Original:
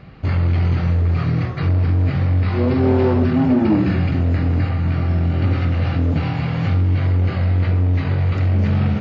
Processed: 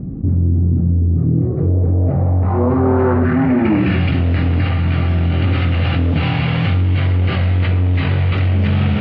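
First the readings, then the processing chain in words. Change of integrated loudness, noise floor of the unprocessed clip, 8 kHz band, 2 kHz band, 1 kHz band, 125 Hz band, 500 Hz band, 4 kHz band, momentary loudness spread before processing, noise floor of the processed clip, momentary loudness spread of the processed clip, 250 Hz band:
+2.5 dB, −23 dBFS, can't be measured, +5.5 dB, +4.0 dB, +2.5 dB, +2.5 dB, +7.5 dB, 4 LU, −18 dBFS, 2 LU, +2.5 dB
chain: low-pass filter sweep 270 Hz → 3,200 Hz, 0:01.11–0:04.06
envelope flattener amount 50%

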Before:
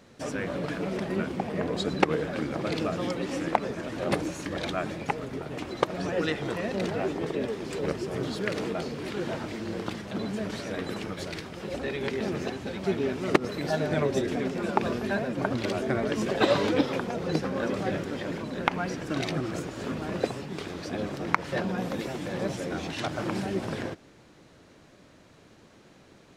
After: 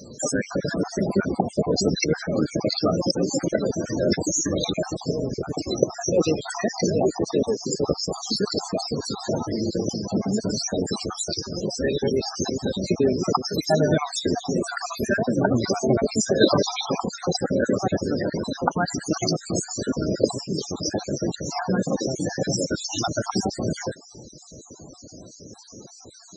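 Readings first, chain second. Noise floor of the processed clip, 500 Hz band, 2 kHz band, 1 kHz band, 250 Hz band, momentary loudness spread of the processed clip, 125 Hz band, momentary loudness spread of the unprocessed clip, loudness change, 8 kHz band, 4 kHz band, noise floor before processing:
−46 dBFS, +5.5 dB, +0.5 dB, +2.5 dB, +6.0 dB, 7 LU, +6.0 dB, 8 LU, +6.0 dB, +16.5 dB, +9.0 dB, −55 dBFS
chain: time-frequency cells dropped at random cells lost 49%
high shelf with overshoot 4,000 Hz +12.5 dB, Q 1.5
in parallel at +1 dB: downward compressor 8 to 1, threshold −42 dBFS, peak gain reduction 23 dB
on the sum: asymmetric clip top −14 dBFS, bottom −9.5 dBFS
spectral peaks only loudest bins 32
level +7.5 dB

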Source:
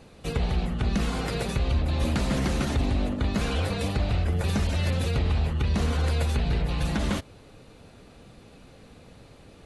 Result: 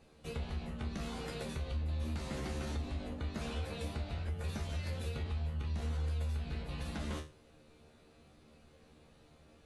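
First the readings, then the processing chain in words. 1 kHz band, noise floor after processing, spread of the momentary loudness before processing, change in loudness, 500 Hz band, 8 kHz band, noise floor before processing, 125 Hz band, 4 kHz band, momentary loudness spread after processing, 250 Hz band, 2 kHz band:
−13.5 dB, −63 dBFS, 3 LU, −12.5 dB, −12.5 dB, −13.0 dB, −51 dBFS, −12.0 dB, −13.0 dB, 4 LU, −14.0 dB, −13.5 dB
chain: mains-hum notches 50/100/150 Hz
tuned comb filter 76 Hz, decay 0.31 s, harmonics all, mix 90%
downward compressor 3 to 1, threshold −31 dBFS, peak gain reduction 6 dB
level −3.5 dB

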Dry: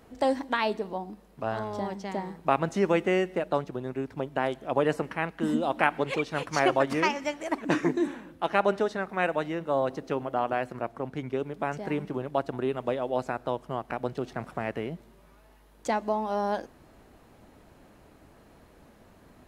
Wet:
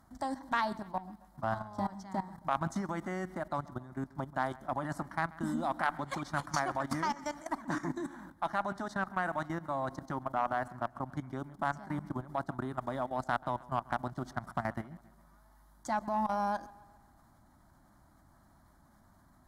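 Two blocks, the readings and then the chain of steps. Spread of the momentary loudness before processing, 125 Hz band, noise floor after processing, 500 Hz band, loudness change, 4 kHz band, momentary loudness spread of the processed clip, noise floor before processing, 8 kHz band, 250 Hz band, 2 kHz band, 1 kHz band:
9 LU, −3.5 dB, −63 dBFS, −11.5 dB, −6.5 dB, −9.5 dB, 7 LU, −57 dBFS, −3.0 dB, −7.0 dB, −6.0 dB, −3.5 dB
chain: output level in coarse steps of 16 dB
phaser with its sweep stopped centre 1,100 Hz, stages 4
harmonic generator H 2 −19 dB, 3 −19 dB, 6 −33 dB, 8 −35 dB, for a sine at −21.5 dBFS
on a send: delay with a low-pass on its return 135 ms, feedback 53%, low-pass 3,700 Hz, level −21 dB
on the sum: level +7.5 dB

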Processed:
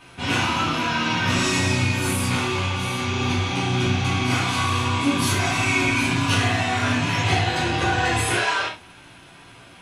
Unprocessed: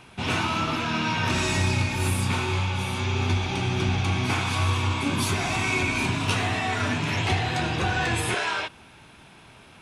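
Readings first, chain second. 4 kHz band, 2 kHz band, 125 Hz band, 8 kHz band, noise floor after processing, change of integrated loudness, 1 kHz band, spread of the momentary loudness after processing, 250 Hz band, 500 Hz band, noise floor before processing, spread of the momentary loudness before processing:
+4.5 dB, +4.0 dB, +1.5 dB, +5.0 dB, −47 dBFS, +3.5 dB, +4.0 dB, 4 LU, +4.5 dB, +3.5 dB, −50 dBFS, 3 LU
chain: notch filter 440 Hz, Q 12
reverb whose tail is shaped and stops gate 130 ms falling, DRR −7 dB
level −3.5 dB

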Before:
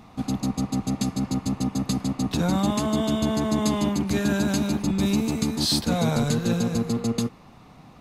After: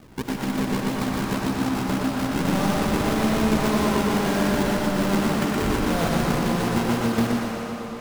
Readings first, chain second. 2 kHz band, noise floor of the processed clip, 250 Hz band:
+7.5 dB, −33 dBFS, +1.0 dB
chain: high-pass filter 210 Hz 6 dB per octave
in parallel at +3 dB: downward compressor, threshold −31 dBFS, peak gain reduction 11 dB
on the sum: sample-and-hold swept by an LFO 42×, swing 160% 1.8 Hz
on a send: feedback echo with a band-pass in the loop 101 ms, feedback 81%, band-pass 1,100 Hz, level −5 dB
on the sum: comb and all-pass reverb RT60 3.6 s, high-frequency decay 0.95×, pre-delay 30 ms, DRR 2 dB
feedback echo with a swinging delay time 121 ms, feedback 59%, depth 61 cents, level −4 dB
level −4.5 dB

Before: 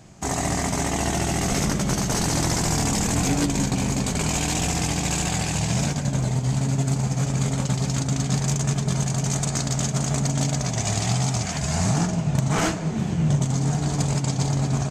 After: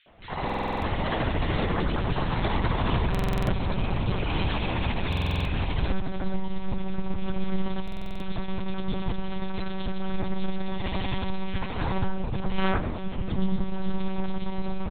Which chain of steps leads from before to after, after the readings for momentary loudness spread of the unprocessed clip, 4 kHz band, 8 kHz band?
2 LU, −7.0 dB, below −35 dB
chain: comb filter 2 ms, depth 82%
reversed playback
upward compression, threshold −28 dBFS
reversed playback
flanger 0.15 Hz, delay 5.7 ms, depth 9.3 ms, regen +72%
three-band delay without the direct sound highs, mids, lows 70/190 ms, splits 360/2,100 Hz
one-pitch LPC vocoder at 8 kHz 190 Hz
buffer that repeats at 0:00.45/0:03.10/0:05.08/0:07.83, samples 2,048, times 7
level +2.5 dB

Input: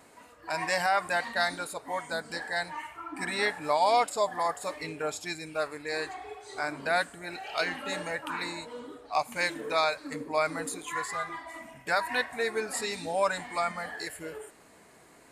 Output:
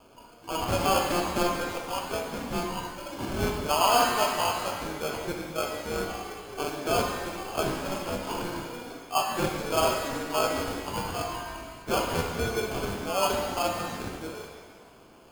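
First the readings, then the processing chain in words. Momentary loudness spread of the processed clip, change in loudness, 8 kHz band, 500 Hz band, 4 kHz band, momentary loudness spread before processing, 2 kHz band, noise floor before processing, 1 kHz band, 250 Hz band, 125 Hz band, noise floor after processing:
12 LU, +2.0 dB, +5.0 dB, +2.5 dB, +4.0 dB, 13 LU, −3.5 dB, −56 dBFS, +2.0 dB, +7.5 dB, +11.5 dB, −52 dBFS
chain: decimation without filtering 23×
reverb with rising layers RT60 1.4 s, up +7 semitones, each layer −8 dB, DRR 2 dB

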